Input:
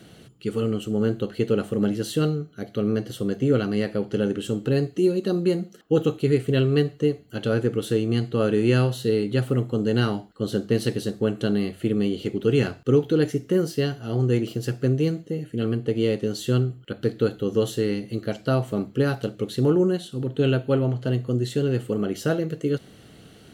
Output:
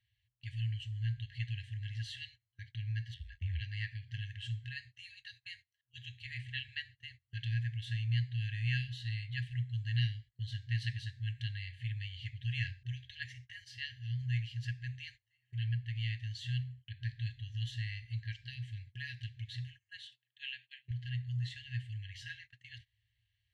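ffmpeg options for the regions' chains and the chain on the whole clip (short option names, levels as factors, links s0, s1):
-filter_complex "[0:a]asettb=1/sr,asplit=3[s0][s1][s2];[s0]atrim=end=3.144[s3];[s1]atrim=start=3.14:end=3.61,asetpts=PTS-STARTPTS,afade=t=in:d=0.004:c=qsin,afade=t=out:st=0.466:d=0.004:c=qsin,acrossover=split=4400[s4][s5];[s5]acompressor=threshold=0.001:ratio=4:attack=1:release=60[s6];[s4][s6]amix=inputs=2:normalize=0,aeval=exprs='val(0)*sin(2*PI*43*n/s)':c=same[s7];[s2]atrim=start=3.606[s8];[s3][s7]acrossfade=d=0.004:c1=hsin:c2=qsin[s9];[s9][s8]acrossfade=d=0.004:c1=qsin:c2=hsin,asettb=1/sr,asplit=3[s10][s11][s12];[s10]atrim=end=20.074[s13];[s11]atrim=start=20.07:end=20.91,asetpts=PTS-STARTPTS,afade=t=in:d=0.004:c=qsin,afade=t=out:st=0.836:d=0.004:c=qsin,highpass=720,highshelf=f=7000:g=-6[s14];[s12]atrim=start=20.906[s15];[s13][s14]acrossfade=d=0.004:c1=hsin:c2=qsin[s16];[s16][s15]acrossfade=d=0.004:c1=qsin:c2=hsin,afftfilt=real='re*(1-between(b*sr/4096,120,1600))':imag='im*(1-between(b*sr/4096,120,1600))':win_size=4096:overlap=0.75,agate=range=0.0891:threshold=0.00447:ratio=16:detection=peak,lowpass=3000,volume=0.631"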